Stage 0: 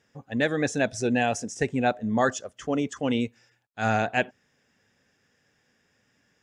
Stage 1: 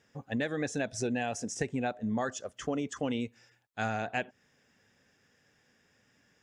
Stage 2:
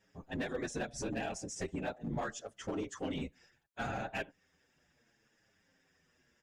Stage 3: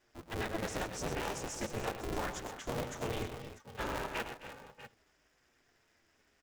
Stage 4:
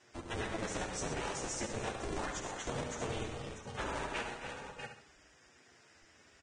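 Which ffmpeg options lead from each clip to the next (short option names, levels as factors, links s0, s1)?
-af "acompressor=threshold=0.0355:ratio=6"
-filter_complex "[0:a]afftfilt=real='hypot(re,im)*cos(2*PI*random(0))':imag='hypot(re,im)*sin(2*PI*random(1))':win_size=512:overlap=0.75,volume=42.2,asoftclip=hard,volume=0.0237,asplit=2[s0][s1];[s1]adelay=7.1,afreqshift=-0.72[s2];[s0][s2]amix=inputs=2:normalize=1,volume=1.68"
-af "aecho=1:1:103|120|262|307|643|646:0.224|0.299|0.178|0.2|0.141|0.133,aeval=exprs='val(0)*sgn(sin(2*PI*170*n/s))':c=same"
-af "aecho=1:1:69|138|207|276:0.398|0.135|0.046|0.0156,acompressor=threshold=0.00282:ratio=2,volume=2.37" -ar 22050 -c:a libvorbis -b:a 16k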